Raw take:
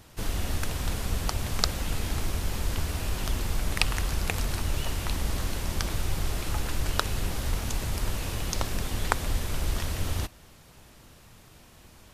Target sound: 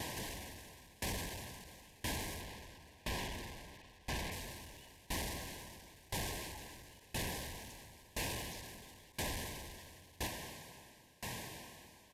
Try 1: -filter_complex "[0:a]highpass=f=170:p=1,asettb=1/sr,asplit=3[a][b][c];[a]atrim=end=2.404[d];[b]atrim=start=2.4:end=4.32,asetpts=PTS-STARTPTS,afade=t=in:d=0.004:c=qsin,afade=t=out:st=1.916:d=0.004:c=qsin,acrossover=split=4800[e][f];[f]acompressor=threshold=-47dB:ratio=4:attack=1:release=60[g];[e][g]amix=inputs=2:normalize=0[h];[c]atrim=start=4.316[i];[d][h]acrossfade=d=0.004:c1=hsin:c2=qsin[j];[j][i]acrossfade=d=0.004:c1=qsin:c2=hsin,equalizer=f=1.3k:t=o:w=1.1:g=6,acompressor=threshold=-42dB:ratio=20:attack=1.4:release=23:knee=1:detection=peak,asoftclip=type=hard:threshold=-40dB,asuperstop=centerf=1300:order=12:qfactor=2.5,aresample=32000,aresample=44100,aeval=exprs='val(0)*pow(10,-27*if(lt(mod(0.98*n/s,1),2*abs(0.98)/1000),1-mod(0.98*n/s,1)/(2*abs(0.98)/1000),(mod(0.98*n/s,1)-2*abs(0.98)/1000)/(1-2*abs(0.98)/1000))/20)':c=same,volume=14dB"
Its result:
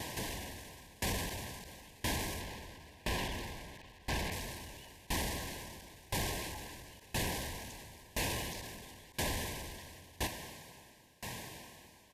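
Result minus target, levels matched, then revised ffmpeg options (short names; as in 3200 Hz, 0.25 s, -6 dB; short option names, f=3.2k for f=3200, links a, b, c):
hard clip: distortion -11 dB
-filter_complex "[0:a]highpass=f=170:p=1,asettb=1/sr,asplit=3[a][b][c];[a]atrim=end=2.404[d];[b]atrim=start=2.4:end=4.32,asetpts=PTS-STARTPTS,afade=t=in:d=0.004:c=qsin,afade=t=out:st=1.916:d=0.004:c=qsin,acrossover=split=4800[e][f];[f]acompressor=threshold=-47dB:ratio=4:attack=1:release=60[g];[e][g]amix=inputs=2:normalize=0[h];[c]atrim=start=4.316[i];[d][h]acrossfade=d=0.004:c1=hsin:c2=qsin[j];[j][i]acrossfade=d=0.004:c1=qsin:c2=hsin,equalizer=f=1.3k:t=o:w=1.1:g=6,acompressor=threshold=-42dB:ratio=20:attack=1.4:release=23:knee=1:detection=peak,asoftclip=type=hard:threshold=-48dB,asuperstop=centerf=1300:order=12:qfactor=2.5,aresample=32000,aresample=44100,aeval=exprs='val(0)*pow(10,-27*if(lt(mod(0.98*n/s,1),2*abs(0.98)/1000),1-mod(0.98*n/s,1)/(2*abs(0.98)/1000),(mod(0.98*n/s,1)-2*abs(0.98)/1000)/(1-2*abs(0.98)/1000))/20)':c=same,volume=14dB"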